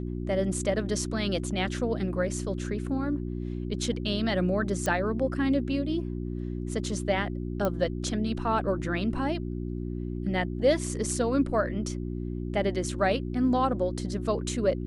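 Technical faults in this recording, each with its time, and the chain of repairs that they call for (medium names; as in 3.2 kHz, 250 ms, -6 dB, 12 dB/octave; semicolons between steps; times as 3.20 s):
hum 60 Hz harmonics 6 -33 dBFS
4.86 s: pop -16 dBFS
7.65 s: pop -15 dBFS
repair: de-click; de-hum 60 Hz, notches 6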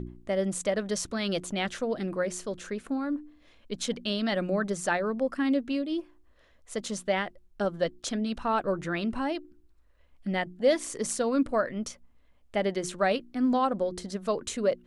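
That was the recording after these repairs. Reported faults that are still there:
nothing left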